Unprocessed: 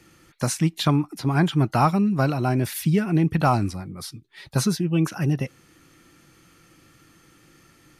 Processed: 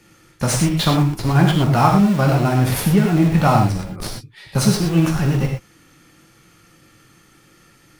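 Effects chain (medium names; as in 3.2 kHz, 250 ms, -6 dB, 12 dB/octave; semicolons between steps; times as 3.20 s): in parallel at -5.5 dB: Schmitt trigger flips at -28.5 dBFS; on the sum: gated-style reverb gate 140 ms flat, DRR 0.5 dB; trim +1 dB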